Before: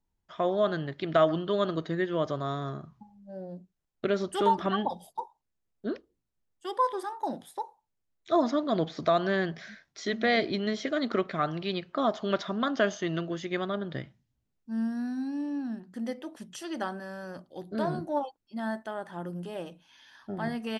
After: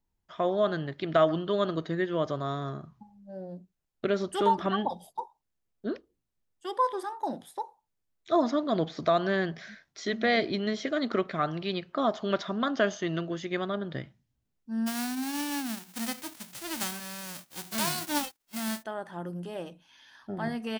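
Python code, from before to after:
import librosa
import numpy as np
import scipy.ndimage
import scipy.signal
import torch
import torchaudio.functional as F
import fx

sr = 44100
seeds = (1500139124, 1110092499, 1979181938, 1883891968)

y = fx.envelope_flatten(x, sr, power=0.1, at=(14.86, 18.82), fade=0.02)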